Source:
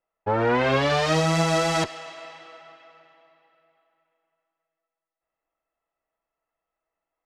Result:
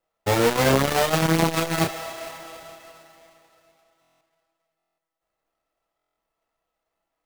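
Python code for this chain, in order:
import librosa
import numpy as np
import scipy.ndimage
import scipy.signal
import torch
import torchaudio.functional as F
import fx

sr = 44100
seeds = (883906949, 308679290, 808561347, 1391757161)

y = fx.halfwave_hold(x, sr)
y = fx.doubler(y, sr, ms=30.0, db=-6.0)
y = fx.buffer_glitch(y, sr, at_s=(4.0, 4.77, 5.97), block=1024, repeats=8)
y = fx.transformer_sat(y, sr, knee_hz=430.0)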